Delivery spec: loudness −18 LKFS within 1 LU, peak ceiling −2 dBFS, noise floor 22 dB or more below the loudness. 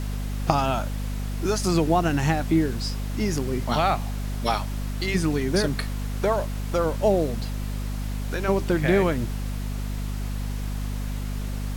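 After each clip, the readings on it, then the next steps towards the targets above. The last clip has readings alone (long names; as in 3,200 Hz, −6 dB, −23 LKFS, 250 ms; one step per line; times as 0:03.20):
mains hum 50 Hz; hum harmonics up to 250 Hz; level of the hum −26 dBFS; background noise floor −30 dBFS; target noise floor −48 dBFS; integrated loudness −26.0 LKFS; sample peak −6.0 dBFS; target loudness −18.0 LKFS
→ hum removal 50 Hz, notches 5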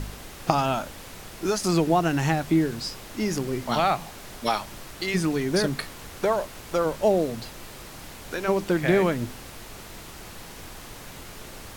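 mains hum none found; background noise floor −42 dBFS; target noise floor −48 dBFS
→ noise reduction from a noise print 6 dB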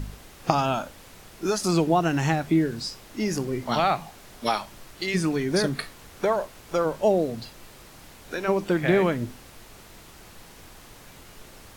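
background noise floor −48 dBFS; integrated loudness −25.5 LKFS; sample peak −6.0 dBFS; target loudness −18.0 LKFS
→ level +7.5 dB
brickwall limiter −2 dBFS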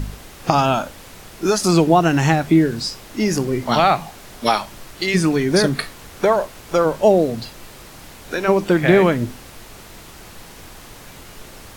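integrated loudness −18.0 LKFS; sample peak −2.0 dBFS; background noise floor −41 dBFS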